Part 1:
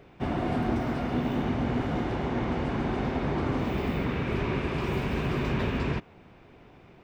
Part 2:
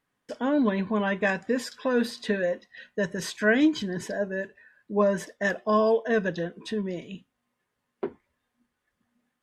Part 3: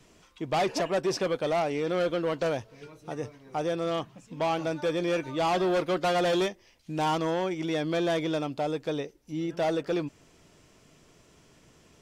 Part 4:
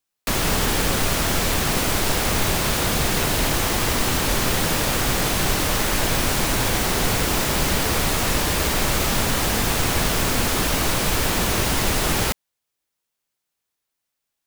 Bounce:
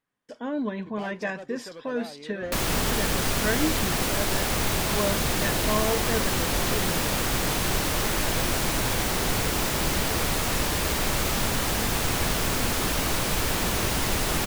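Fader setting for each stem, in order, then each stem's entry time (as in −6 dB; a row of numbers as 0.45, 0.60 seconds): −14.5, −5.5, −14.5, −4.5 decibels; 2.20, 0.00, 0.45, 2.25 seconds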